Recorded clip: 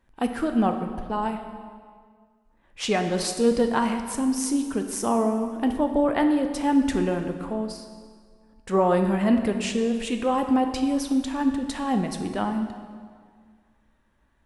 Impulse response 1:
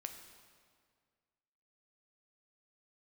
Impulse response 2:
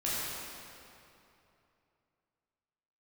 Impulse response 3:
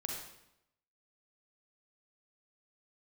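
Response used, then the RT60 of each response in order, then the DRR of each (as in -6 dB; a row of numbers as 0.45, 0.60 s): 1; 1.9, 2.9, 0.85 s; 5.0, -9.5, -0.5 dB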